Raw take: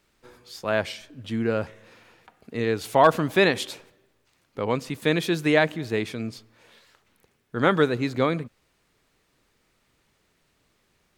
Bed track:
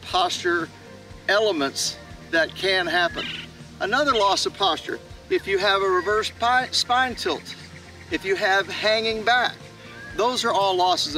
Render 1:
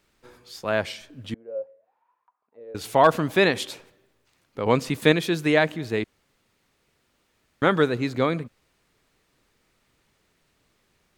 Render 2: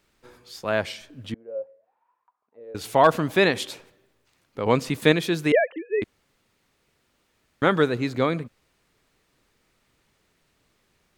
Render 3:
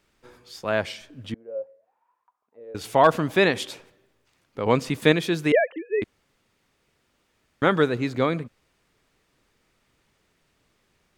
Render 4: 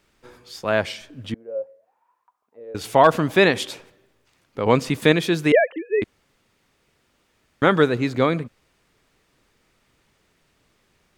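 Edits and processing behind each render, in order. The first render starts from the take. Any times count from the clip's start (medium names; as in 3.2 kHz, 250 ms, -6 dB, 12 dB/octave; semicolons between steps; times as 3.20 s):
1.34–2.75 s: auto-wah 540–1100 Hz, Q 16, down, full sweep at -29 dBFS; 4.66–5.12 s: gain +5 dB; 6.04–7.62 s: room tone
1.32–2.64 s: distance through air 120 m; 5.52–6.02 s: formants replaced by sine waves
treble shelf 11 kHz -5 dB; band-stop 4.1 kHz, Q 28
trim +3.5 dB; peak limiter -3 dBFS, peak gain reduction 2.5 dB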